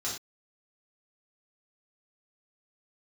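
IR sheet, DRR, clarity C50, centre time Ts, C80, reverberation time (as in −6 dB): −6.5 dB, 4.5 dB, 34 ms, 9.5 dB, non-exponential decay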